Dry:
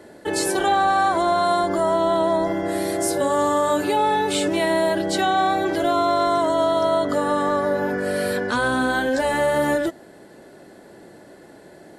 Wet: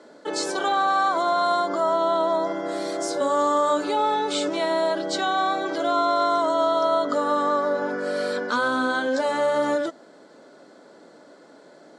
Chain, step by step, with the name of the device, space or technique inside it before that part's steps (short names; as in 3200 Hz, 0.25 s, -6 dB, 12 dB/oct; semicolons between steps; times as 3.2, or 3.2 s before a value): television speaker (speaker cabinet 200–7000 Hz, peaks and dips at 200 Hz -7 dB, 360 Hz -9 dB, 770 Hz -5 dB, 1300 Hz +5 dB, 1800 Hz -9 dB, 2700 Hz -7 dB); 1.67–2.33 LPF 9200 Hz